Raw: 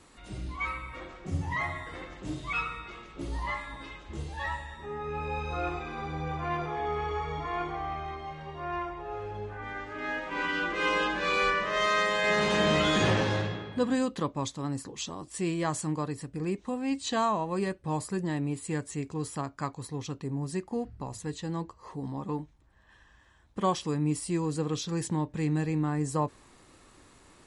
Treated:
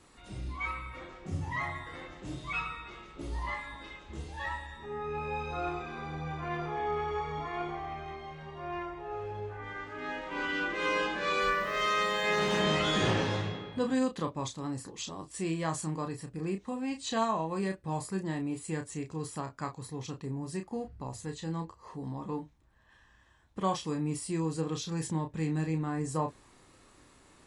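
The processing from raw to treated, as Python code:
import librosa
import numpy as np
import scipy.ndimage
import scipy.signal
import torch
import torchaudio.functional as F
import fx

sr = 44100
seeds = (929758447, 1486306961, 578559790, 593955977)

y = fx.doubler(x, sr, ms=31.0, db=-6.0)
y = fx.sample_gate(y, sr, floor_db=-45.0, at=(11.41, 12.62))
y = y * librosa.db_to_amplitude(-3.5)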